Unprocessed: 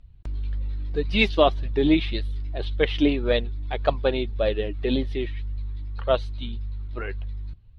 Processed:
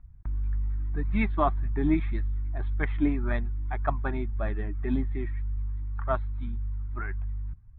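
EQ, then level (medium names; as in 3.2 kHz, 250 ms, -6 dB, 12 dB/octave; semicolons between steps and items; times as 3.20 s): steep low-pass 3 kHz 48 dB/octave; static phaser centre 1.2 kHz, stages 4; 0.0 dB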